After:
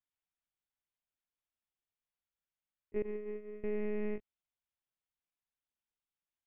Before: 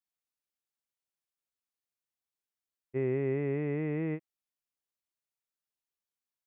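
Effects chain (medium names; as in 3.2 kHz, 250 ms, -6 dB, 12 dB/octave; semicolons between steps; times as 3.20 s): monotone LPC vocoder at 8 kHz 210 Hz; 3.02–3.64 s: gate -28 dBFS, range -20 dB; trim -2 dB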